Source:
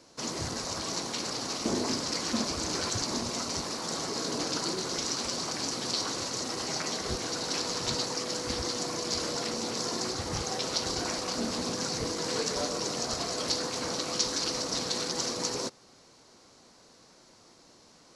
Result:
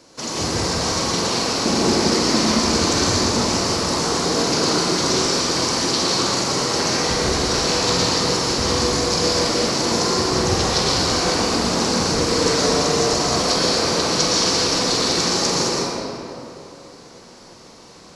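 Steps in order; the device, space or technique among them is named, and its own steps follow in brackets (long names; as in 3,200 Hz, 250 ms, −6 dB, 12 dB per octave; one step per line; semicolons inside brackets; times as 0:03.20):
tunnel (flutter between parallel walls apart 7.8 metres, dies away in 0.32 s; convolution reverb RT60 2.7 s, pre-delay 106 ms, DRR −6 dB)
level +6.5 dB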